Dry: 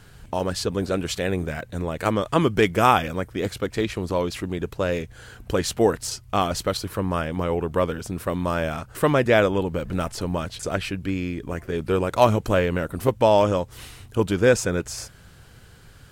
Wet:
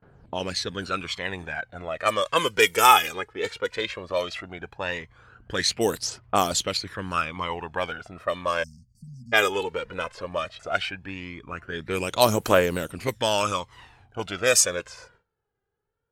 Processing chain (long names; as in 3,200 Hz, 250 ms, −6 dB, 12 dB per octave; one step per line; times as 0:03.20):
phase shifter 0.16 Hz, delay 2.5 ms, feedback 64%
noise gate with hold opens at −32 dBFS
time-frequency box erased 0:08.63–0:09.33, 250–4,400 Hz
low-pass that shuts in the quiet parts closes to 700 Hz, open at −13 dBFS
spectral tilt +4 dB per octave
level −2 dB